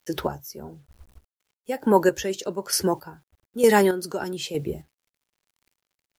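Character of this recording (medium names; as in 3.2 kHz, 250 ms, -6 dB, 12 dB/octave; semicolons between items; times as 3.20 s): a quantiser's noise floor 10-bit, dither none; chopped level 1.1 Hz, depth 60%, duty 30%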